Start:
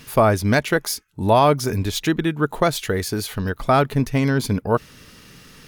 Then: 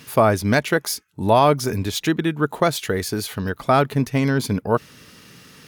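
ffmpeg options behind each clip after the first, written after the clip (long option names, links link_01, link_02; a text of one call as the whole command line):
ffmpeg -i in.wav -af "highpass=93" out.wav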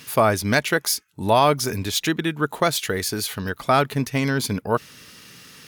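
ffmpeg -i in.wav -af "tiltshelf=frequency=1300:gain=-3.5" out.wav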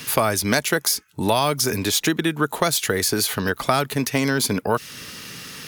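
ffmpeg -i in.wav -filter_complex "[0:a]acrossover=split=230|1600|5000[link_01][link_02][link_03][link_04];[link_01]acompressor=threshold=-39dB:ratio=4[link_05];[link_02]acompressor=threshold=-29dB:ratio=4[link_06];[link_03]acompressor=threshold=-38dB:ratio=4[link_07];[link_04]acompressor=threshold=-29dB:ratio=4[link_08];[link_05][link_06][link_07][link_08]amix=inputs=4:normalize=0,volume=8.5dB" out.wav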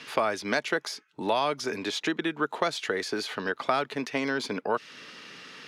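ffmpeg -i in.wav -af "highpass=280,lowpass=3700,volume=-5.5dB" out.wav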